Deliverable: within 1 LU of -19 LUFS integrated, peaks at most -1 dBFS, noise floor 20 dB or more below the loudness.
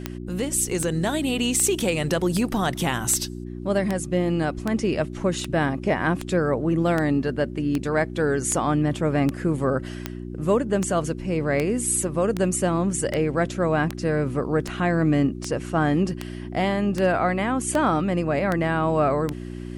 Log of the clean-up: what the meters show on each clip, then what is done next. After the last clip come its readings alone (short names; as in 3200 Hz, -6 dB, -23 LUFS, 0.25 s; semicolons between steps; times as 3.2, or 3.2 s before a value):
clicks 26; hum 60 Hz; harmonics up to 360 Hz; hum level -31 dBFS; loudness -23.5 LUFS; peak -6.5 dBFS; loudness target -19.0 LUFS
-> de-click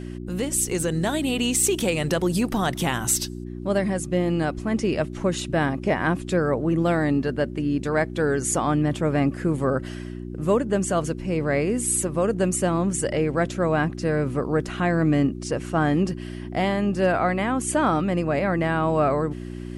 clicks 0; hum 60 Hz; harmonics up to 360 Hz; hum level -31 dBFS
-> de-hum 60 Hz, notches 6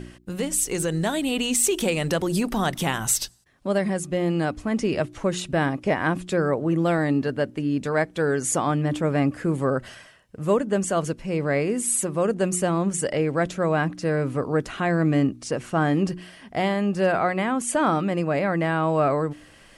hum none; loudness -24.0 LUFS; peak -9.0 dBFS; loudness target -19.0 LUFS
-> gain +5 dB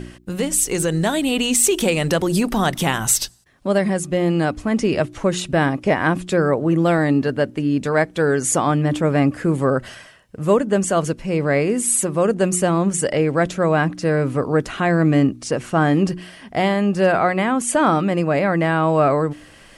loudness -19.0 LUFS; peak -4.0 dBFS; noise floor -46 dBFS